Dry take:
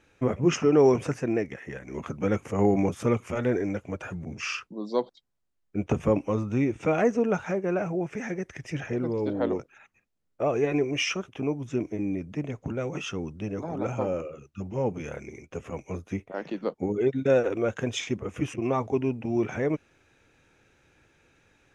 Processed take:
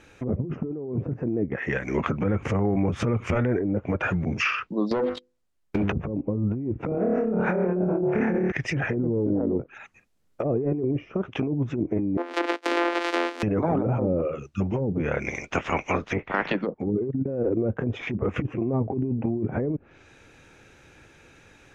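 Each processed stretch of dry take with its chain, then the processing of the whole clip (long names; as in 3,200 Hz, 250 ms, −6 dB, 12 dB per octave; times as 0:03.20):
0:02.23–0:03.58: low-shelf EQ 130 Hz +11.5 dB + downward compressor 8 to 1, threshold −29 dBFS
0:04.91–0:05.93: mains-hum notches 50/100/150/200/250/300/350/400/450/500 Hz + leveller curve on the samples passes 3 + downward compressor 4 to 1, threshold −31 dBFS
0:06.89–0:08.52: downward compressor 5 to 1, threshold −30 dBFS + flutter between parallel walls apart 4.7 metres, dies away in 0.79 s
0:12.17–0:13.43: samples sorted by size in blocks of 256 samples + Butterworth high-pass 260 Hz 96 dB per octave
0:15.25–0:16.54: ceiling on every frequency bin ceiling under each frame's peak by 20 dB + high-frequency loss of the air 88 metres
whole clip: treble cut that deepens with the level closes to 340 Hz, closed at −24 dBFS; dynamic equaliser 2,000 Hz, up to +4 dB, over −50 dBFS, Q 0.83; compressor whose output falls as the input rises −32 dBFS, ratio −1; level +7.5 dB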